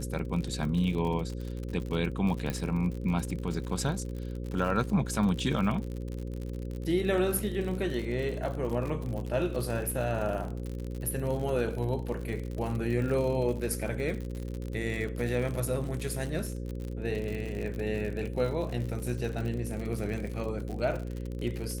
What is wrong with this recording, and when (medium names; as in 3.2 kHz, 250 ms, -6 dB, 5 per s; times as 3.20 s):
buzz 60 Hz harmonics 9 -36 dBFS
crackle 59 per s -34 dBFS
2.50 s: pop